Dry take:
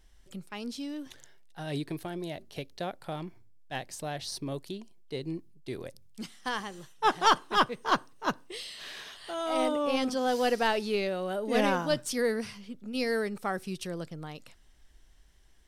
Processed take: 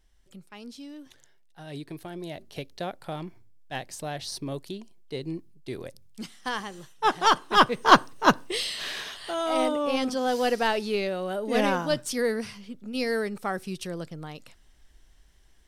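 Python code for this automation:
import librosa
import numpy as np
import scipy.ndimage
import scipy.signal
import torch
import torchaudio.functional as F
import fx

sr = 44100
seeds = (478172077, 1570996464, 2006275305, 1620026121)

y = fx.gain(x, sr, db=fx.line((1.73, -5.0), (2.48, 2.0), (7.33, 2.0), (7.91, 11.0), (8.65, 11.0), (9.75, 2.0)))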